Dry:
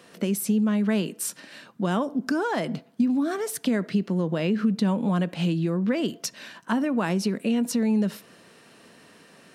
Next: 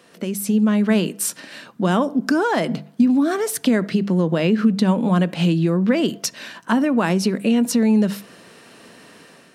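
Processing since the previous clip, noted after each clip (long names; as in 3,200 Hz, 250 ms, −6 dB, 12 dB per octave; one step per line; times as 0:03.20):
mains-hum notches 50/100/150/200 Hz
automatic gain control gain up to 7 dB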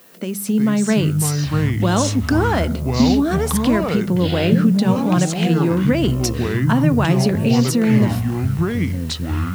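background noise violet −50 dBFS
delay with pitch and tempo change per echo 275 ms, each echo −6 semitones, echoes 3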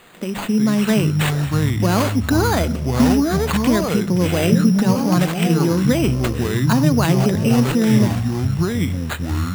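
bad sample-rate conversion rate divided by 8×, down none, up hold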